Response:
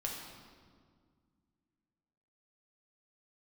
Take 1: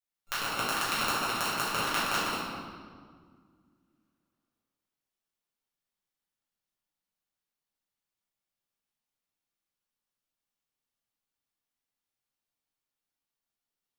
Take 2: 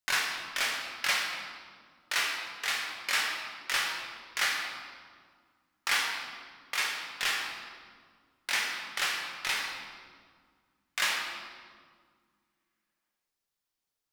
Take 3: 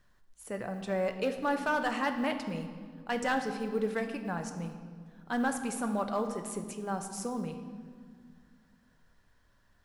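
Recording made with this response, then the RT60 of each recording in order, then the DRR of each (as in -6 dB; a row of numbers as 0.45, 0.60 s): 2; 1.9, 1.9, 2.0 s; -11.0, -1.5, 6.0 dB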